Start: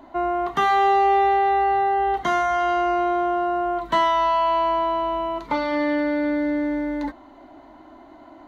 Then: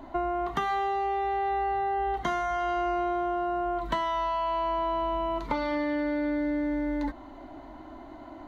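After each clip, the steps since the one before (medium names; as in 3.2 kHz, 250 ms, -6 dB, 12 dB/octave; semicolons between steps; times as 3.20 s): bass shelf 110 Hz +11 dB; compression, threshold -26 dBFS, peak gain reduction 11.5 dB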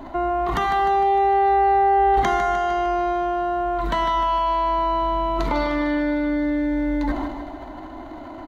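transient shaper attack -3 dB, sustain +11 dB; feedback delay 152 ms, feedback 58%, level -9 dB; trim +6.5 dB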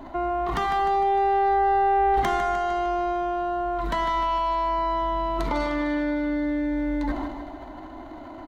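tracing distortion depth 0.065 ms; trim -3.5 dB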